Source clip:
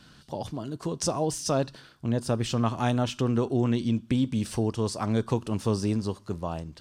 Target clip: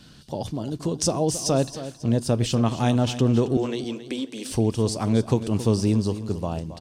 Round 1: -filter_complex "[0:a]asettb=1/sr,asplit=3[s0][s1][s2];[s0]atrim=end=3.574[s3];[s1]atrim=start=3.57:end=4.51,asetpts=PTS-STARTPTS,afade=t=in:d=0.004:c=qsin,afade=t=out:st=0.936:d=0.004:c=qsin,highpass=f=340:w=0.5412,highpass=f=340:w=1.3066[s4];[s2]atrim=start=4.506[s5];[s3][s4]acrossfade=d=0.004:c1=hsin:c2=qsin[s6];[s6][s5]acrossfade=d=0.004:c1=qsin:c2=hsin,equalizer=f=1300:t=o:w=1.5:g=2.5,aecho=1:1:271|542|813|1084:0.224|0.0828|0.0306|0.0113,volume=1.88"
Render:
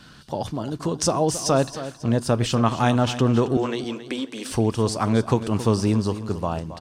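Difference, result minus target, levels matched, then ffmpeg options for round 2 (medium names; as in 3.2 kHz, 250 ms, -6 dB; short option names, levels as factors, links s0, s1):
1 kHz band +5.0 dB
-filter_complex "[0:a]asettb=1/sr,asplit=3[s0][s1][s2];[s0]atrim=end=3.574[s3];[s1]atrim=start=3.57:end=4.51,asetpts=PTS-STARTPTS,afade=t=in:d=0.004:c=qsin,afade=t=out:st=0.936:d=0.004:c=qsin,highpass=f=340:w=0.5412,highpass=f=340:w=1.3066[s4];[s2]atrim=start=4.506[s5];[s3][s4]acrossfade=d=0.004:c1=hsin:c2=qsin[s6];[s6][s5]acrossfade=d=0.004:c1=qsin:c2=hsin,equalizer=f=1300:t=o:w=1.5:g=-7,aecho=1:1:271|542|813|1084:0.224|0.0828|0.0306|0.0113,volume=1.88"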